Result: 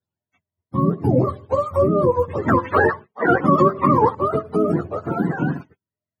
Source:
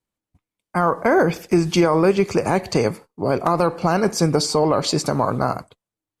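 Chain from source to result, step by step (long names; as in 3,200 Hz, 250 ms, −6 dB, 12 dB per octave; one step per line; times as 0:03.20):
frequency axis turned over on the octave scale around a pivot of 440 Hz
0:02.48–0:04.15: parametric band 1,600 Hz +13.5 dB 2.7 octaves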